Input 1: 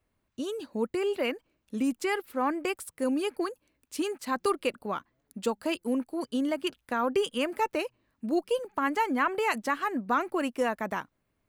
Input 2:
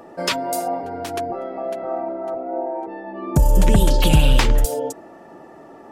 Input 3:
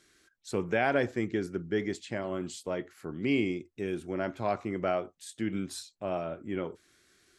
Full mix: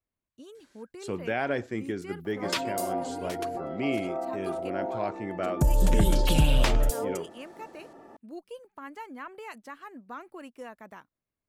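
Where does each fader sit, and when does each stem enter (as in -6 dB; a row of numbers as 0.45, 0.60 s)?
-14.5, -7.5, -2.0 dB; 0.00, 2.25, 0.55 s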